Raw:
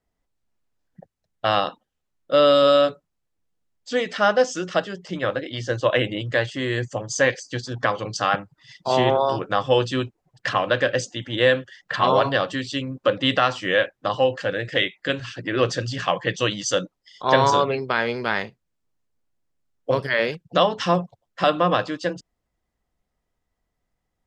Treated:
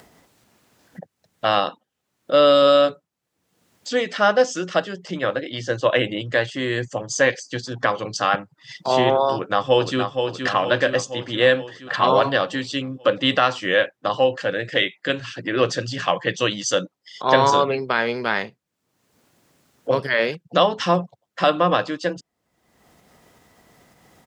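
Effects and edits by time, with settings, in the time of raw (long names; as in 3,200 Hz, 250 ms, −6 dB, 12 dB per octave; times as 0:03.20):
0:09.33–0:10.00: delay throw 470 ms, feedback 60%, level −6 dB
whole clip: upward compression, threshold −29 dBFS; high-pass filter 130 Hz; level +1.5 dB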